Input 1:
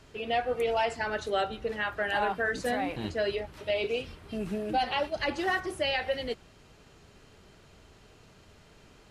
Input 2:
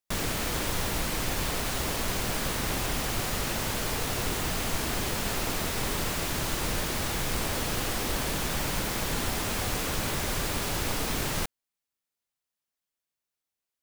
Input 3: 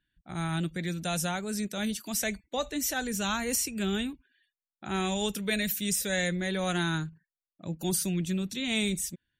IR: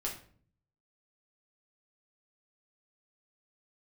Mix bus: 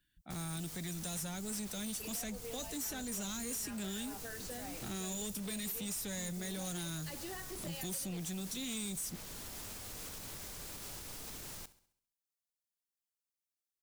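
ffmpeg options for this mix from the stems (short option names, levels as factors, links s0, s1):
-filter_complex "[0:a]acompressor=threshold=0.0158:ratio=2,adelay=1850,volume=0.473[s0];[1:a]alimiter=level_in=1.19:limit=0.0631:level=0:latency=1:release=202,volume=0.841,adelay=200,volume=0.2,asplit=2[s1][s2];[s2]volume=0.133[s3];[2:a]highshelf=f=12000:g=4,volume=0.891[s4];[s3]aecho=0:1:67|134|201|268|335|402|469:1|0.48|0.23|0.111|0.0531|0.0255|0.0122[s5];[s0][s1][s4][s5]amix=inputs=4:normalize=0,bass=f=250:g=1,treble=f=4000:g=9,acrossover=split=340|4900[s6][s7][s8];[s6]acompressor=threshold=0.0126:ratio=4[s9];[s7]acompressor=threshold=0.00631:ratio=4[s10];[s8]acompressor=threshold=0.02:ratio=4[s11];[s9][s10][s11]amix=inputs=3:normalize=0,asoftclip=type=tanh:threshold=0.015"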